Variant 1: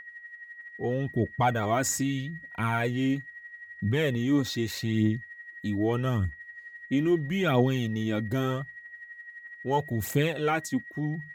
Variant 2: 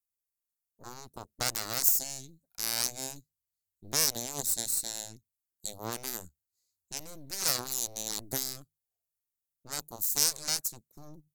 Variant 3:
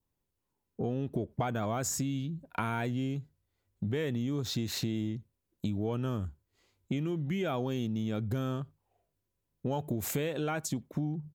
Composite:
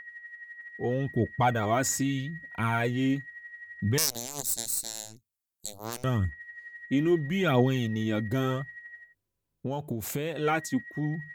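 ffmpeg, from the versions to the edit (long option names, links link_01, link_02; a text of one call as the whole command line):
ffmpeg -i take0.wav -i take1.wav -i take2.wav -filter_complex "[0:a]asplit=3[link_01][link_02][link_03];[link_01]atrim=end=3.982[link_04];[1:a]atrim=start=3.978:end=6.042[link_05];[link_02]atrim=start=6.038:end=9.15[link_06];[2:a]atrim=start=8.91:end=10.48[link_07];[link_03]atrim=start=10.24[link_08];[link_04][link_05]acrossfade=duration=0.004:curve1=hsin:curve2=hsin[link_09];[link_09][link_06]acrossfade=duration=0.004:curve1=hsin:curve2=hsin[link_10];[link_10][link_07]acrossfade=duration=0.24:curve1=tri:curve2=tri[link_11];[link_11][link_08]acrossfade=duration=0.24:curve1=tri:curve2=tri" out.wav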